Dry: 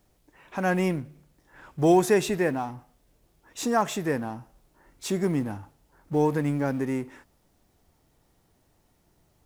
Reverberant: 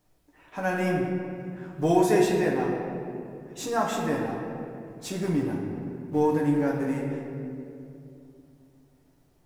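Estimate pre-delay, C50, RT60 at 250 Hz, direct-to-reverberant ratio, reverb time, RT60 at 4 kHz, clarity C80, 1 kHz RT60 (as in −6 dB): 7 ms, 2.5 dB, 3.5 s, −3.0 dB, 2.7 s, 1.4 s, 3.5 dB, 2.3 s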